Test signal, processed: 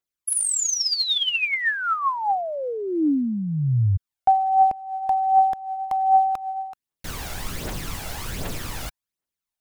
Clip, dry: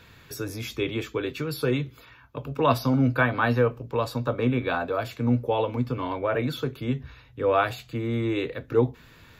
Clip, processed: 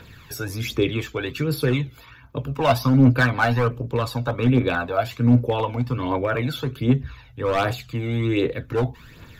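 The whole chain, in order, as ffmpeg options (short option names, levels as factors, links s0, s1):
-af "volume=7.08,asoftclip=hard,volume=0.141,aphaser=in_gain=1:out_gain=1:delay=1.5:decay=0.53:speed=1.3:type=triangular,volume=1.41"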